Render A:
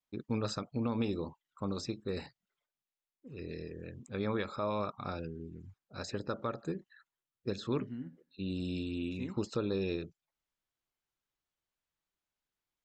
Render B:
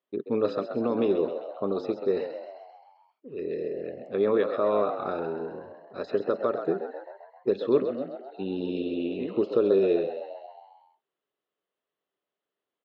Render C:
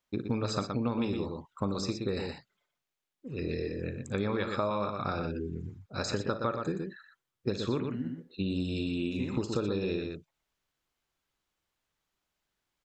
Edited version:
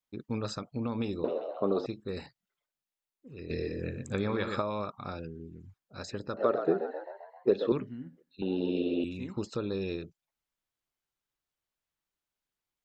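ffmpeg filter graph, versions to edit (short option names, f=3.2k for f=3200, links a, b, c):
-filter_complex "[1:a]asplit=3[a][b][c];[0:a]asplit=5[d][e][f][g][h];[d]atrim=end=1.242[i];[a]atrim=start=1.238:end=1.862[j];[e]atrim=start=1.858:end=3.502[k];[2:a]atrim=start=3.498:end=4.622[l];[f]atrim=start=4.618:end=6.372[m];[b]atrim=start=6.368:end=7.722[n];[g]atrim=start=7.718:end=8.422[o];[c]atrim=start=8.418:end=9.042[p];[h]atrim=start=9.038[q];[i][j]acrossfade=d=0.004:c1=hsin:c2=hsin[r];[r][k]acrossfade=d=0.004:c1=hsin:c2=hsin[s];[s][l]acrossfade=d=0.004:c1=hsin:c2=hsin[t];[t][m]acrossfade=d=0.004:c1=hsin:c2=hsin[u];[u][n]acrossfade=d=0.004:c1=hsin:c2=hsin[v];[v][o]acrossfade=d=0.004:c1=hsin:c2=hsin[w];[w][p]acrossfade=d=0.004:c1=hsin:c2=hsin[x];[x][q]acrossfade=d=0.004:c1=hsin:c2=hsin"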